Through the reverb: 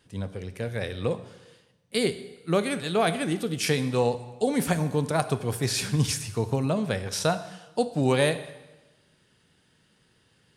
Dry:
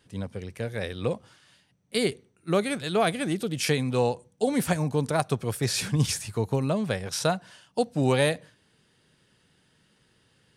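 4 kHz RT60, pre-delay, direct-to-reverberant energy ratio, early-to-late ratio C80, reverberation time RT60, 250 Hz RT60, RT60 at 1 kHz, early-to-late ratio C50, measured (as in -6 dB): 1.0 s, 7 ms, 11.0 dB, 15.0 dB, 1.1 s, 1.1 s, 1.1 s, 13.5 dB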